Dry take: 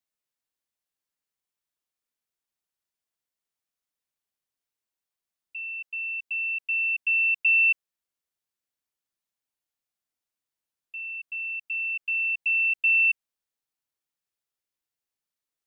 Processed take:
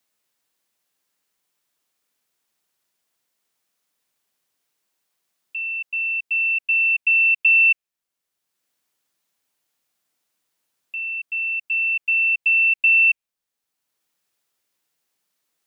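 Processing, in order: dynamic EQ 2500 Hz, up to +7 dB, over -36 dBFS, Q 3.7; three-band squash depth 40%; gain +1.5 dB

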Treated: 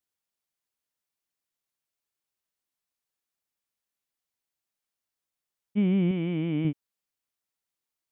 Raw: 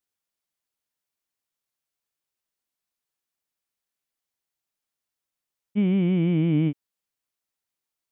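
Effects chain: 6.11–6.65 low shelf 240 Hz -9 dB; gain -2 dB

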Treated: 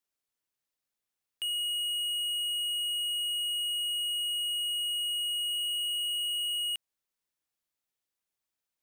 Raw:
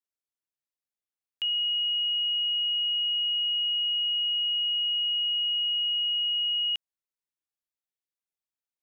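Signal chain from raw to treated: 5.5–6.58 whine 2800 Hz -39 dBFS; soft clip -36.5 dBFS, distortion -10 dB; gain +5.5 dB

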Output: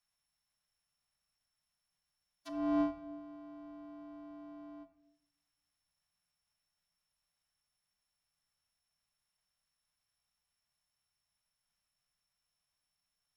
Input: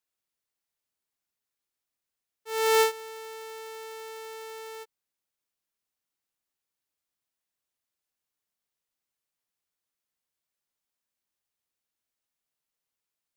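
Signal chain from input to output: sample sorter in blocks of 8 samples; frequency shift -95 Hz; EQ curve 210 Hz 0 dB, 450 Hz -15 dB, 760 Hz -2 dB; formant-preserving pitch shift -3 st; treble ducked by the level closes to 480 Hz, closed at -44 dBFS; shoebox room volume 160 m³, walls mixed, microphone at 0.35 m; gain +3.5 dB

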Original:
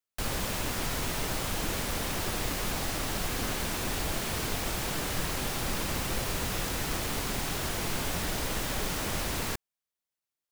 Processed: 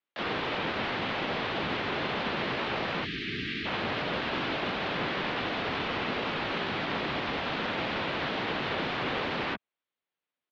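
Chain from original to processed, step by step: spectral delete 3.05–3.66, 520–1700 Hz; mistuned SSB -150 Hz 300–3500 Hz; harmoniser -5 st -11 dB, +3 st -1 dB; gain +2.5 dB

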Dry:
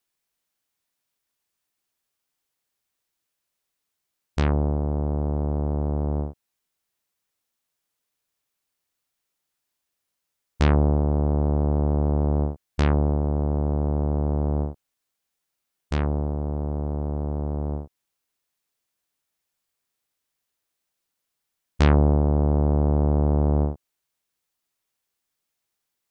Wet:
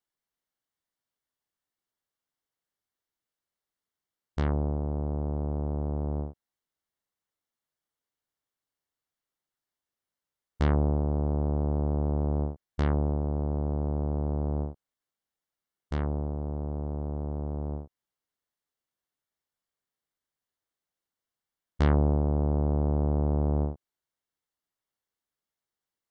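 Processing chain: high shelf 3700 Hz -8.5 dB; notch 2500 Hz, Q 6.4; gain -5.5 dB

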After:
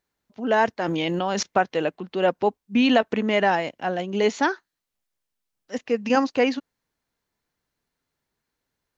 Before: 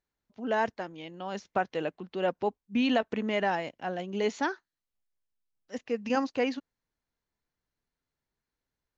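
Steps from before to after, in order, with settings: low shelf 66 Hz -9.5 dB; 0.79–1.43 fast leveller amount 100%; gain +8 dB

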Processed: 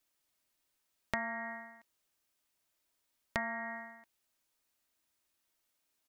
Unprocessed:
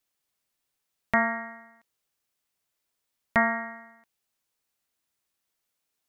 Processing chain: comb 3.2 ms, depth 32%; compressor 12:1, threshold -33 dBFS, peak gain reduction 16.5 dB

